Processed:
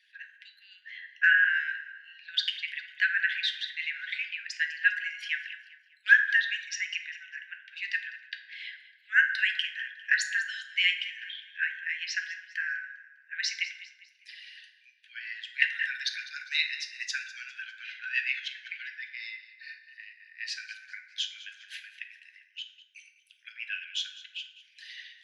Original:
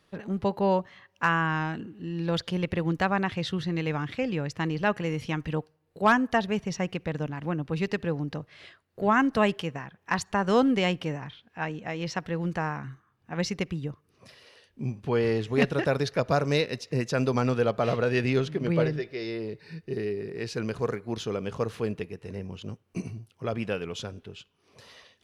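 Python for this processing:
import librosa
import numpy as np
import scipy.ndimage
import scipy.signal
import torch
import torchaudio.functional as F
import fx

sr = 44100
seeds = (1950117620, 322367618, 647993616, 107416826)

y = fx.envelope_sharpen(x, sr, power=1.5)
y = scipy.signal.sosfilt(scipy.signal.cheby1(10, 1.0, 1500.0, 'highpass', fs=sr, output='sos'), y)
y = fx.peak_eq(y, sr, hz=2400.0, db=8.5, octaves=2.2)
y = fx.echo_feedback(y, sr, ms=201, feedback_pct=41, wet_db=-17)
y = fx.rev_fdn(y, sr, rt60_s=0.94, lf_ratio=1.0, hf_ratio=0.55, size_ms=29.0, drr_db=4.0)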